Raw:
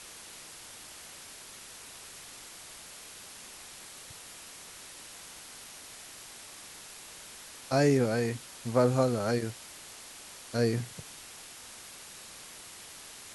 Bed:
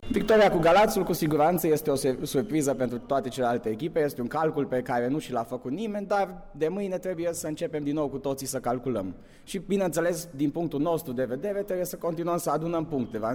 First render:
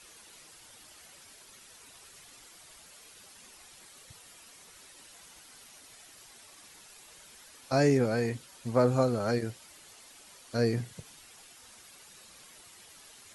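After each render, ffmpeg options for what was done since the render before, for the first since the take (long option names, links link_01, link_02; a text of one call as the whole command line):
ffmpeg -i in.wav -af "afftdn=noise_reduction=9:noise_floor=-48" out.wav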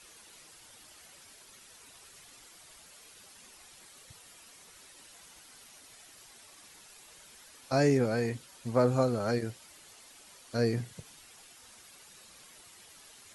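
ffmpeg -i in.wav -af "volume=-1dB" out.wav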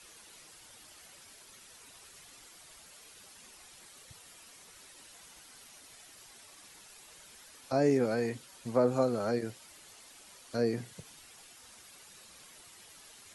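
ffmpeg -i in.wav -filter_complex "[0:a]acrossover=split=170|950[link_01][link_02][link_03];[link_01]acompressor=threshold=-47dB:ratio=6[link_04];[link_03]alimiter=level_in=8.5dB:limit=-24dB:level=0:latency=1:release=207,volume=-8.5dB[link_05];[link_04][link_02][link_05]amix=inputs=3:normalize=0" out.wav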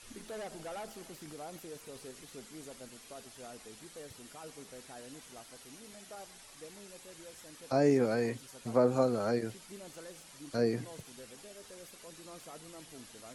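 ffmpeg -i in.wav -i bed.wav -filter_complex "[1:a]volume=-23.5dB[link_01];[0:a][link_01]amix=inputs=2:normalize=0" out.wav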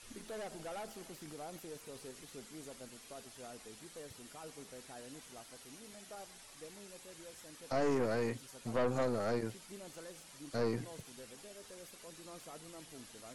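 ffmpeg -i in.wav -af "aeval=exprs='(tanh(25.1*val(0)+0.45)-tanh(0.45))/25.1':channel_layout=same" out.wav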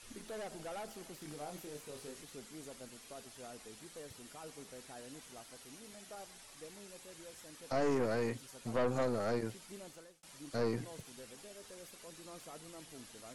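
ffmpeg -i in.wav -filter_complex "[0:a]asettb=1/sr,asplit=3[link_01][link_02][link_03];[link_01]atrim=end=1.194[link_04];[link_02]atrim=start=1.19:end=2.22,asetpts=PTS-STARTPTS,afade=type=in:duration=0.004:curve=qsin,afade=type=out:start_time=1.026:duration=0.004:curve=qsin,asplit=2[link_05][link_06];[link_06]adelay=27,volume=-5dB[link_07];[link_05][link_07]amix=inputs=2:normalize=0,atrim=end_sample=45423[link_08];[link_03]atrim=start=2.216[link_09];[link_04][link_08]acrossfade=duration=0.004:curve1=hsin:curve2=qsin[link_10];[link_10][link_09]acrossfade=duration=0.004:curve1=qsin:curve2=hsin,asplit=2[link_11][link_12];[link_11]atrim=end=10.23,asetpts=PTS-STARTPTS,afade=type=out:start_time=9.82:duration=0.41[link_13];[link_12]atrim=start=10.23,asetpts=PTS-STARTPTS,afade=type=in:duration=0.004:curve=hsin[link_14];[link_13][link_14]concat=n=2:v=0:a=1" out.wav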